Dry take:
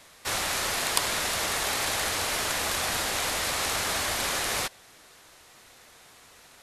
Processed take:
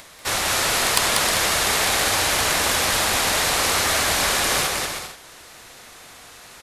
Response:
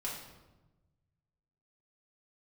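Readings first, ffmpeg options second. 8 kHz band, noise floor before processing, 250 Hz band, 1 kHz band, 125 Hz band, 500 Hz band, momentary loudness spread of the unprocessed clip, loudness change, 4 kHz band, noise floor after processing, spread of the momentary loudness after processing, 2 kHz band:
+8.0 dB, -54 dBFS, +8.0 dB, +8.0 dB, +8.5 dB, +8.0 dB, 2 LU, +8.0 dB, +8.0 dB, -45 dBFS, 5 LU, +8.0 dB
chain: -filter_complex "[0:a]acompressor=mode=upward:threshold=0.00447:ratio=2.5,asoftclip=type=tanh:threshold=0.376,asplit=2[s0][s1];[s1]aecho=0:1:190|313.5|393.8|446|479.9:0.631|0.398|0.251|0.158|0.1[s2];[s0][s2]amix=inputs=2:normalize=0,volume=2"

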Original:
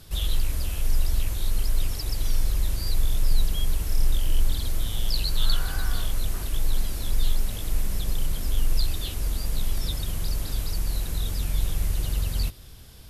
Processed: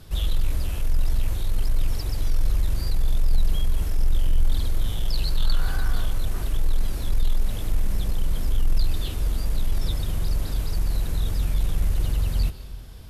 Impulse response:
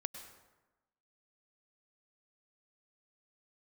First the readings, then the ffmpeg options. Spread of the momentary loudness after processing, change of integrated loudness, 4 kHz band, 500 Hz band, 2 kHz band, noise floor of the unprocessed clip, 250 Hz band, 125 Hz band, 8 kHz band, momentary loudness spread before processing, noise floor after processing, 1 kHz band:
3 LU, +1.5 dB, -3.5 dB, +2.0 dB, -0.5 dB, -43 dBFS, +2.5 dB, +2.5 dB, -5.5 dB, 3 LU, -32 dBFS, +1.0 dB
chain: -filter_complex "[0:a]highshelf=f=2700:g=-8,aeval=exprs='0.335*(cos(1*acos(clip(val(0)/0.335,-1,1)))-cos(1*PI/2))+0.0299*(cos(5*acos(clip(val(0)/0.335,-1,1)))-cos(5*PI/2))':c=same,asplit=2[s0][s1];[1:a]atrim=start_sample=2205,asetrate=33075,aresample=44100[s2];[s1][s2]afir=irnorm=-1:irlink=0,volume=0.891[s3];[s0][s3]amix=inputs=2:normalize=0,volume=0.562"

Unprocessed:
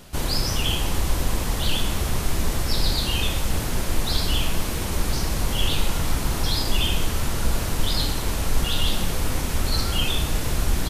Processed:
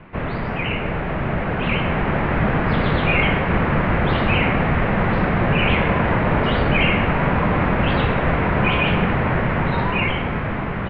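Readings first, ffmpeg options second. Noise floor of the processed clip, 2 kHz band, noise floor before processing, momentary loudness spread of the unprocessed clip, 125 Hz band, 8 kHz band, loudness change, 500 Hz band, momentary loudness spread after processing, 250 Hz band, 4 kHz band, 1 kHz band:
-25 dBFS, +11.5 dB, -27 dBFS, 3 LU, +6.5 dB, under -40 dB, +5.5 dB, +11.0 dB, 6 LU, +10.0 dB, -4.5 dB, +11.0 dB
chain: -af "dynaudnorm=f=790:g=5:m=3.76,highpass=f=190:t=q:w=0.5412,highpass=f=190:t=q:w=1.307,lowpass=f=2600:t=q:w=0.5176,lowpass=f=2600:t=q:w=0.7071,lowpass=f=2600:t=q:w=1.932,afreqshift=-380,volume=2.51"

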